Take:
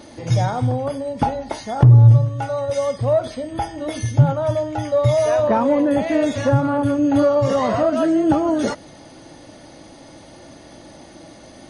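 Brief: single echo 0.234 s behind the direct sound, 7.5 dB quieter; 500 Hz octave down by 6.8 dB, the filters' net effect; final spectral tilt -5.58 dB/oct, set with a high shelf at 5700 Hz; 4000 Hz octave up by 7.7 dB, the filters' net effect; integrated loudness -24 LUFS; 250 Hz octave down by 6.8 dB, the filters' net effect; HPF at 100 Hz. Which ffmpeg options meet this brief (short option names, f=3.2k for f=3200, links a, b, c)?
-af "highpass=100,equalizer=f=250:t=o:g=-6,equalizer=f=500:t=o:g=-8,equalizer=f=4k:t=o:g=6.5,highshelf=f=5.7k:g=8.5,aecho=1:1:234:0.422,volume=-2.5dB"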